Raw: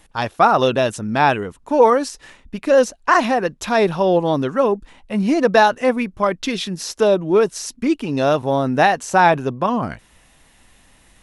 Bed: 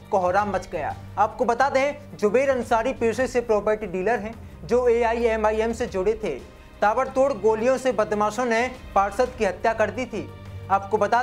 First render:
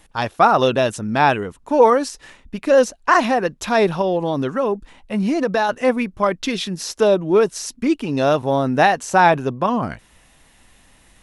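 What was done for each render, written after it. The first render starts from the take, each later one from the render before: 4.01–5.69 compressor 3:1, threshold -16 dBFS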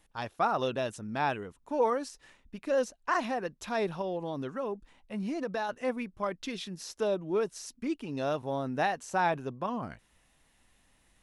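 gain -14.5 dB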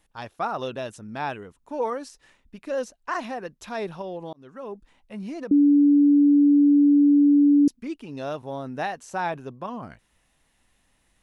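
4.33–4.73 fade in; 5.51–7.68 bleep 288 Hz -13 dBFS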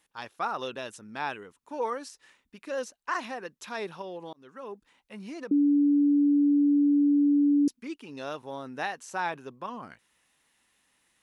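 HPF 450 Hz 6 dB/oct; bell 660 Hz -6 dB 0.55 oct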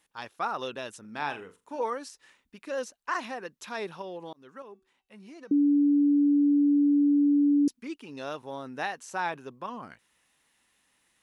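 1–1.83 flutter echo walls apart 7.1 m, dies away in 0.24 s; 4.62–5.51 resonator 380 Hz, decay 0.48 s

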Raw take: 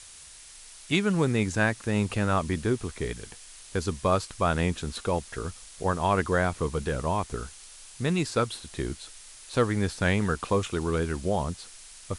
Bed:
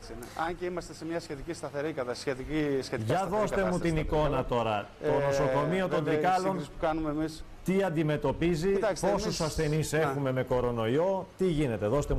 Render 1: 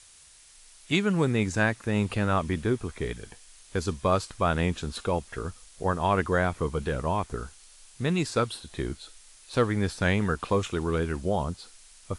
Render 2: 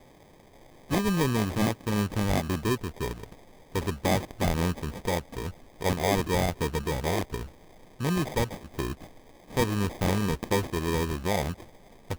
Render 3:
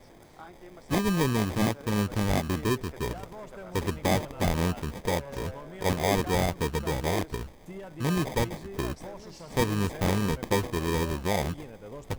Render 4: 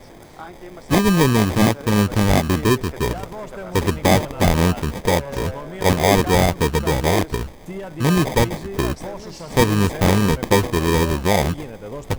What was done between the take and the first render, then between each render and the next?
noise print and reduce 6 dB
sample-rate reducer 1400 Hz, jitter 0%; soft clip -14 dBFS, distortion -21 dB
add bed -15 dB
gain +10 dB

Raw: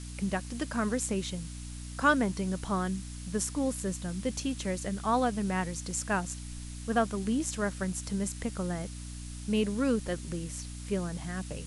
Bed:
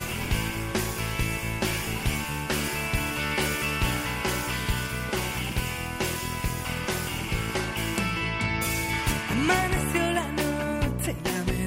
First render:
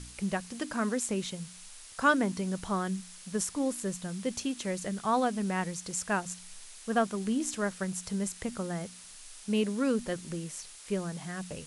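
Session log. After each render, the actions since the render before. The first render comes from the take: de-hum 60 Hz, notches 5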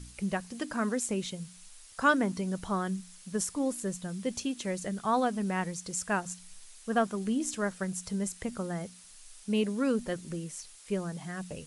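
denoiser 6 dB, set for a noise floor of -50 dBFS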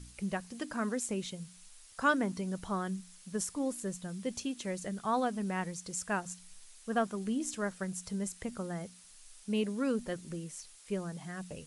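gain -3.5 dB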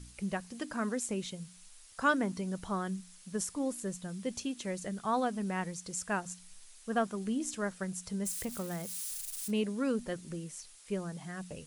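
8.25–9.51 switching spikes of -35 dBFS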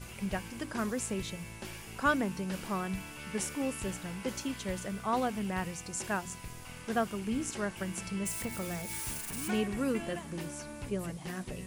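add bed -16.5 dB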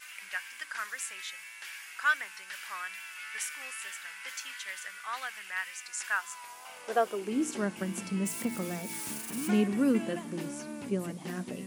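high-pass sweep 1700 Hz -> 230 Hz, 5.98–7.65; wow and flutter 41 cents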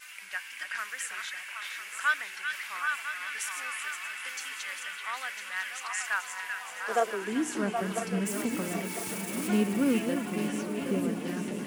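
regenerating reverse delay 0.5 s, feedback 62%, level -7 dB; on a send: delay with a stepping band-pass 0.386 s, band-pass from 2500 Hz, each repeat -1.4 oct, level 0 dB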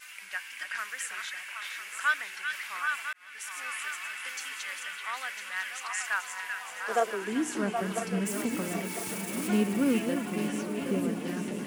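3.13–3.71 fade in

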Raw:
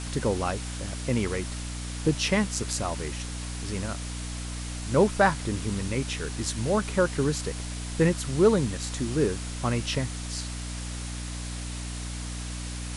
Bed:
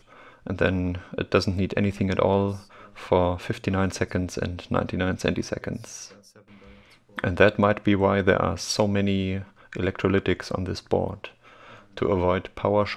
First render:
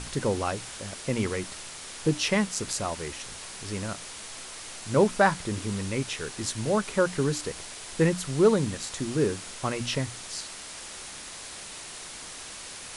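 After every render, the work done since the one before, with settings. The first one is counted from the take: notches 60/120/180/240/300 Hz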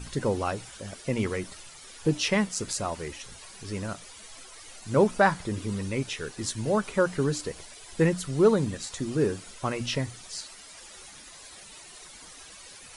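denoiser 12 dB, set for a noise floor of -42 dBFS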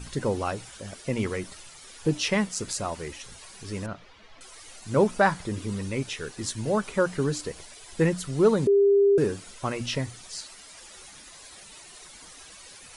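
3.86–4.41 air absorption 260 m; 8.67–9.18 bleep 400 Hz -15.5 dBFS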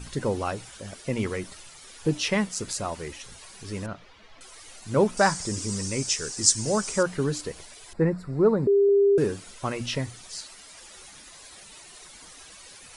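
5.17–7.03 band shelf 6500 Hz +15.5 dB 1.1 oct; 7.93–8.89 running mean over 14 samples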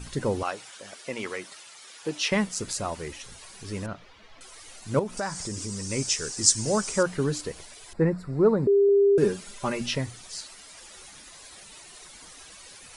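0.43–2.32 weighting filter A; 4.99–5.9 compressor 2.5:1, threshold -31 dBFS; 9.22–9.93 comb 5 ms, depth 68%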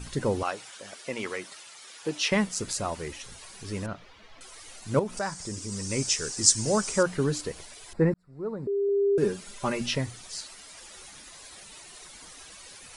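5.19–5.72 expander -32 dBFS; 8.14–9.67 fade in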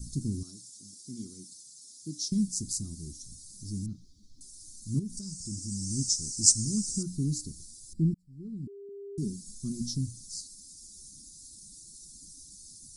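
inverse Chebyshev band-stop 490–2900 Hz, stop band 40 dB; bell 2100 Hz -5.5 dB 0.73 oct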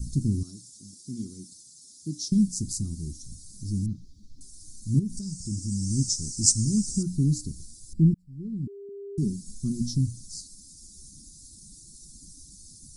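low shelf 310 Hz +9 dB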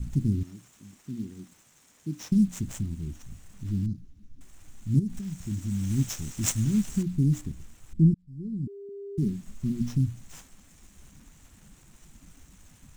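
median filter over 9 samples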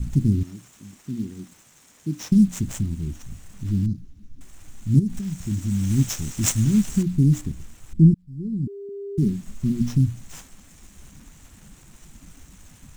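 gain +6 dB; limiter -3 dBFS, peak gain reduction 2 dB

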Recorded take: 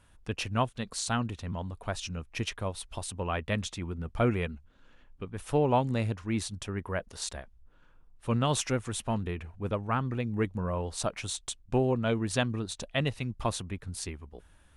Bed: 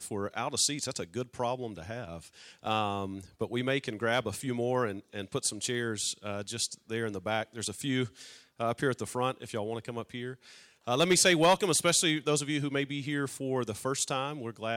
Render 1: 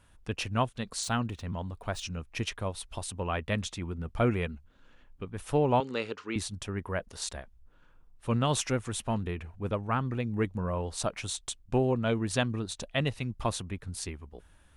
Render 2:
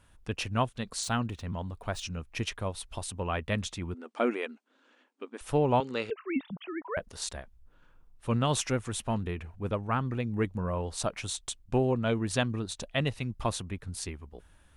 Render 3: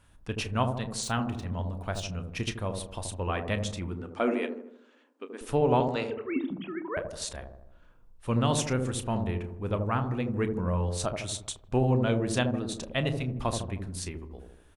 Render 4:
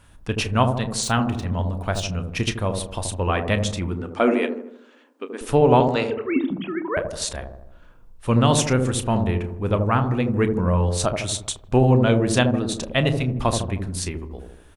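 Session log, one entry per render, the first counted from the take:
1.03–2.03 median filter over 3 samples; 5.8–6.36 speaker cabinet 340–7500 Hz, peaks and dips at 430 Hz +9 dB, 670 Hz -8 dB, 1300 Hz +7 dB, 2900 Hz +6 dB, 4400 Hz +6 dB
3.94–5.41 brick-wall FIR band-pass 220–9500 Hz; 6.1–6.97 sine-wave speech
doubler 32 ms -13 dB; on a send: dark delay 78 ms, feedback 51%, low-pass 690 Hz, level -3 dB
gain +8.5 dB

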